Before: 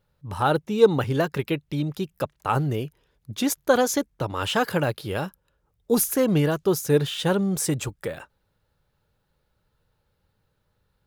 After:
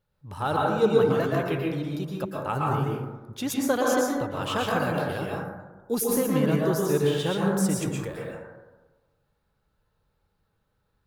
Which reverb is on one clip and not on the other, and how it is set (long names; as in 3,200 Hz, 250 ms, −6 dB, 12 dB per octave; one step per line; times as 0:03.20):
dense smooth reverb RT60 1.2 s, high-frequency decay 0.3×, pre-delay 105 ms, DRR −3.5 dB
level −6.5 dB